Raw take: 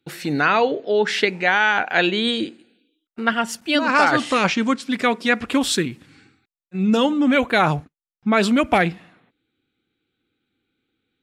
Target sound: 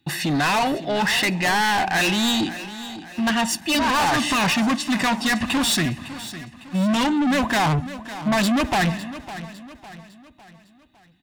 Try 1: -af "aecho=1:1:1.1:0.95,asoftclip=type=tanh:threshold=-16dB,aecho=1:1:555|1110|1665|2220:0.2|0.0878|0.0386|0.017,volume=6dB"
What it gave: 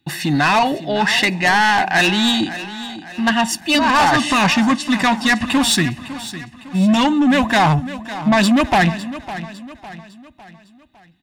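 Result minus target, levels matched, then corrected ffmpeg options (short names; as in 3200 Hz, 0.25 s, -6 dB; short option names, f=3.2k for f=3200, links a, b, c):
soft clip: distortion -5 dB
-af "aecho=1:1:1.1:0.95,asoftclip=type=tanh:threshold=-24dB,aecho=1:1:555|1110|1665|2220:0.2|0.0878|0.0386|0.017,volume=6dB"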